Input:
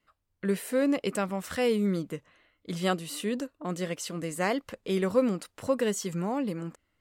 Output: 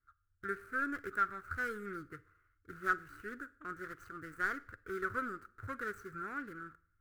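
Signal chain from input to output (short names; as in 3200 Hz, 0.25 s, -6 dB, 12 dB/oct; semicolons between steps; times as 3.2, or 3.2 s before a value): median filter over 25 samples; EQ curve 110 Hz 0 dB, 180 Hz -25 dB, 380 Hz -12 dB, 560 Hz -27 dB, 960 Hz -21 dB, 1400 Hz +13 dB, 2800 Hz -19 dB, 15000 Hz -6 dB; Schroeder reverb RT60 0.55 s, DRR 18.5 dB; gain +1.5 dB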